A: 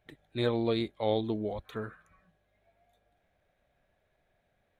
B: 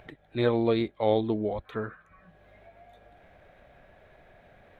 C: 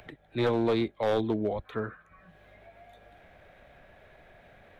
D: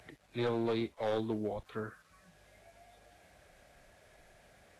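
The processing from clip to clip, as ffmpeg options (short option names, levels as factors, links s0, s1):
-af "acompressor=mode=upward:threshold=0.00501:ratio=2.5,bass=f=250:g=-2,treble=f=4000:g=-14,volume=1.78"
-filter_complex "[0:a]acrossover=split=200|490|1400[s0][s1][s2][s3];[s3]acompressor=mode=upward:threshold=0.00141:ratio=2.5[s4];[s0][s1][s2][s4]amix=inputs=4:normalize=0,volume=10.6,asoftclip=hard,volume=0.0944"
-af "acrusher=bits=9:mix=0:aa=0.000001,volume=0.473" -ar 32000 -c:a libvorbis -b:a 32k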